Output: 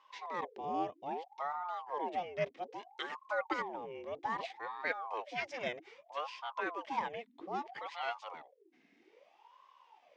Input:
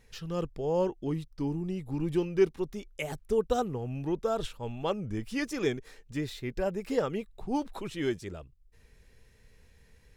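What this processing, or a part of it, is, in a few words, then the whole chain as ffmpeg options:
voice changer toy: -af "aeval=exprs='val(0)*sin(2*PI*650*n/s+650*0.65/0.62*sin(2*PI*0.62*n/s))':channel_layout=same,highpass=440,equalizer=frequency=640:width_type=q:width=4:gain=-6,equalizer=frequency=1400:width_type=q:width=4:gain=-9,equalizer=frequency=2100:width_type=q:width=4:gain=5,equalizer=frequency=4300:width_type=q:width=4:gain=-6,lowpass=frequency=4900:width=0.5412,lowpass=frequency=4900:width=1.3066"

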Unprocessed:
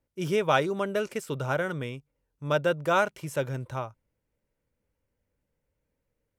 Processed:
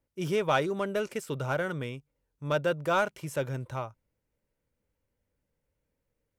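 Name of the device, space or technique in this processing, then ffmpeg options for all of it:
parallel distortion: -filter_complex "[0:a]asplit=2[link_01][link_02];[link_02]asoftclip=type=hard:threshold=-26dB,volume=-8.5dB[link_03];[link_01][link_03]amix=inputs=2:normalize=0,volume=-4dB"

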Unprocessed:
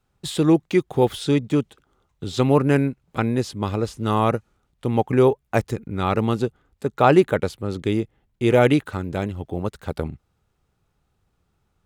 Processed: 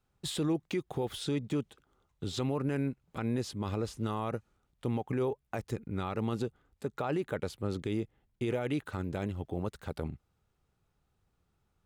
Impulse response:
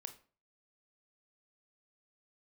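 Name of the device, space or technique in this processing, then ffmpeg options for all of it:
stacked limiters: -af "alimiter=limit=-7.5dB:level=0:latency=1:release=439,alimiter=limit=-13.5dB:level=0:latency=1:release=112,alimiter=limit=-17dB:level=0:latency=1:release=38,volume=-6.5dB"

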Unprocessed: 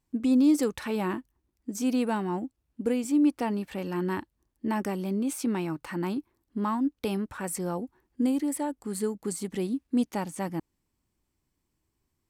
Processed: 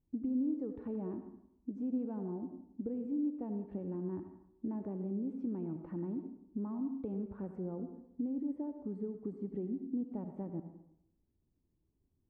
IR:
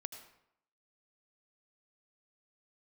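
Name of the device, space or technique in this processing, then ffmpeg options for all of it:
television next door: -filter_complex "[0:a]acompressor=threshold=-37dB:ratio=3,lowpass=440[link_01];[1:a]atrim=start_sample=2205[link_02];[link_01][link_02]afir=irnorm=-1:irlink=0,volume=3.5dB"

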